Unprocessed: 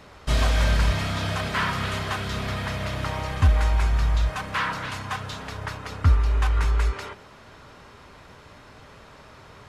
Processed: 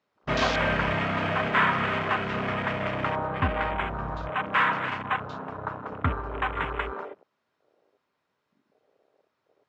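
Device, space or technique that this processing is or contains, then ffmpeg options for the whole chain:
over-cleaned archive recording: -filter_complex "[0:a]highpass=190,lowpass=7000,afwtdn=0.00891,afwtdn=0.0224,asettb=1/sr,asplit=3[s0][s1][s2];[s0]atrim=end=3.264[s3];[s1]atrim=start=3.26:end=3.78,asetpts=PTS-STARTPTS,afade=t=in:d=0.004:c=qsin,afade=t=out:st=0.516:d=0.004:c=qsin,equalizer=f=6000:w=4.3:g=-14[s4];[s2]atrim=start=3.776[s5];[s3][s4]acrossfade=d=0.004:c1=hsin:c2=qsin[s6];[s6][s5]acrossfade=d=0.004:c1=qsin:c2=hsin,volume=1.58"

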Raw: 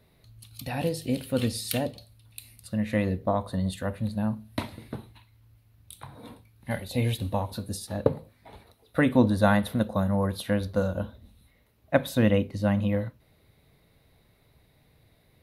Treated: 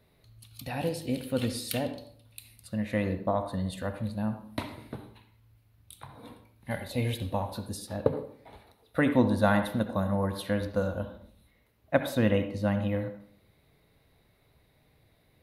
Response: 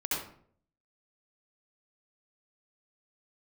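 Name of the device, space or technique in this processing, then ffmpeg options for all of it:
filtered reverb send: -filter_complex "[0:a]asplit=2[s0][s1];[s1]highpass=220,lowpass=4500[s2];[1:a]atrim=start_sample=2205[s3];[s2][s3]afir=irnorm=-1:irlink=0,volume=0.224[s4];[s0][s4]amix=inputs=2:normalize=0,volume=0.668"

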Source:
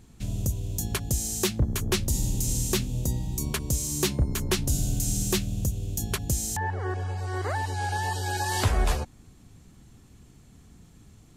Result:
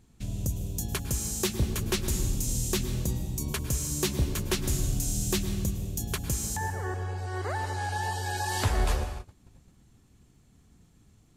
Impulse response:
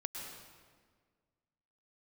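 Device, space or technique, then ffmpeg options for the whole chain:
keyed gated reverb: -filter_complex "[0:a]asplit=3[s0][s1][s2];[1:a]atrim=start_sample=2205[s3];[s1][s3]afir=irnorm=-1:irlink=0[s4];[s2]apad=whole_len=500983[s5];[s4][s5]sidechaingate=range=0.0224:threshold=0.00447:ratio=16:detection=peak,volume=1[s6];[s0][s6]amix=inputs=2:normalize=0,volume=0.422"

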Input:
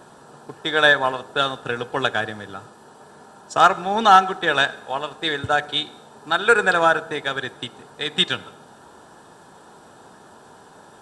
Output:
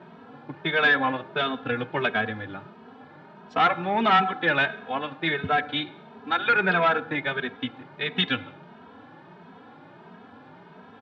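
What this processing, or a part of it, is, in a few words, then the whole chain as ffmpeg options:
barber-pole flanger into a guitar amplifier: -filter_complex "[0:a]asplit=2[s0][s1];[s1]adelay=2.8,afreqshift=1.5[s2];[s0][s2]amix=inputs=2:normalize=1,asoftclip=type=tanh:threshold=0.178,highpass=91,equalizer=f=99:t=q:w=4:g=6,equalizer=f=170:t=q:w=4:g=8,equalizer=f=260:t=q:w=4:g=9,equalizer=f=2200:t=q:w=4:g=10,lowpass=f=3500:w=0.5412,lowpass=f=3500:w=1.3066"

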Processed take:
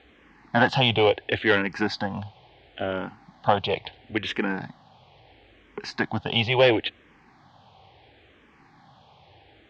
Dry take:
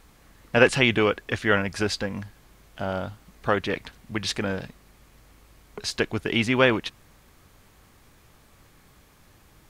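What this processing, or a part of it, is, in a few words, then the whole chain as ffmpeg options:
barber-pole phaser into a guitar amplifier: -filter_complex "[0:a]asplit=2[s0][s1];[s1]afreqshift=-0.73[s2];[s0][s2]amix=inputs=2:normalize=1,asoftclip=type=tanh:threshold=0.15,highpass=100,equalizer=f=190:t=q:w=4:g=-4,equalizer=f=790:t=q:w=4:g=10,equalizer=f=1300:t=q:w=4:g=-6,equalizer=f=3200:t=q:w=4:g=4,lowpass=f=4000:w=0.5412,lowpass=f=4000:w=1.3066,volume=1.88"

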